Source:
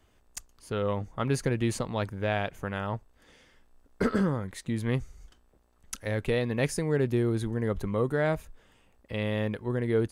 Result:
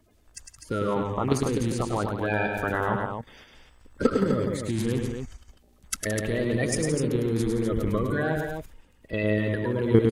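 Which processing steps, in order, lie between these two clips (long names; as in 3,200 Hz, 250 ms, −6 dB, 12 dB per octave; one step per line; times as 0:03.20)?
spectral magnitudes quantised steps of 30 dB
output level in coarse steps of 12 dB
multi-tap delay 104/170/251 ms −5/−11/−6.5 dB
level +9 dB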